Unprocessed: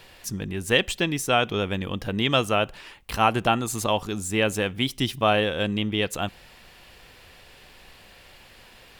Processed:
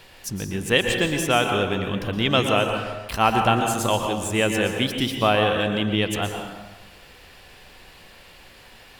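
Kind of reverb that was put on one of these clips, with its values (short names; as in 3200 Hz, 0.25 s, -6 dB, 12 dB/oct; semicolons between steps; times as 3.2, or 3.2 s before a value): plate-style reverb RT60 1.2 s, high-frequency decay 0.6×, pre-delay 0.105 s, DRR 3.5 dB; gain +1 dB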